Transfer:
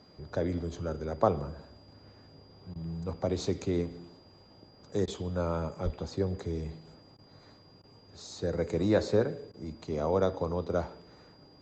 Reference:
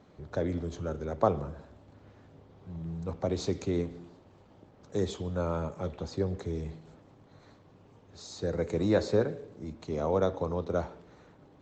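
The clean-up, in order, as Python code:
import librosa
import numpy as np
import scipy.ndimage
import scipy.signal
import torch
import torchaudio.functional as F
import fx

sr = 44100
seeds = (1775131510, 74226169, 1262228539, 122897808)

y = fx.notch(x, sr, hz=4800.0, q=30.0)
y = fx.fix_deplosive(y, sr, at_s=(5.84,))
y = fx.fix_interpolate(y, sr, at_s=(2.74, 5.06, 7.17, 7.82, 9.52), length_ms=15.0)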